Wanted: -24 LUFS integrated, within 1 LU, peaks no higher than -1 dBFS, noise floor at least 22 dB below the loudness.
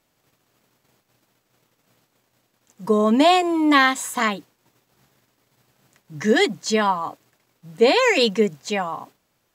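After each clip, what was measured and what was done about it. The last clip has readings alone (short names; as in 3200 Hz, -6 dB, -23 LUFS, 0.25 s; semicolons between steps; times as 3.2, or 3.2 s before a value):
loudness -19.0 LUFS; peak -2.0 dBFS; loudness target -24.0 LUFS
-> gain -5 dB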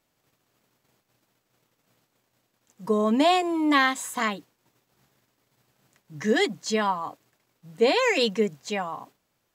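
loudness -24.0 LUFS; peak -7.0 dBFS; noise floor -75 dBFS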